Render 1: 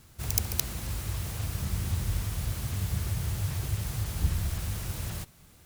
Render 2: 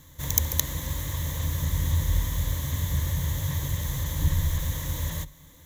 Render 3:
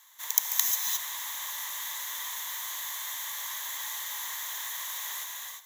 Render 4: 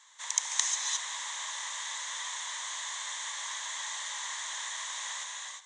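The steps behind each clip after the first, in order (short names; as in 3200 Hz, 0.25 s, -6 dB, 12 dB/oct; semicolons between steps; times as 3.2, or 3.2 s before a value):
ripple EQ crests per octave 1.1, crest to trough 13 dB; gain +2 dB
steep high-pass 810 Hz 36 dB/oct; non-linear reverb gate 0.38 s rising, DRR 0 dB; gain -1 dB
brick-wall FIR low-pass 9400 Hz; gain +1 dB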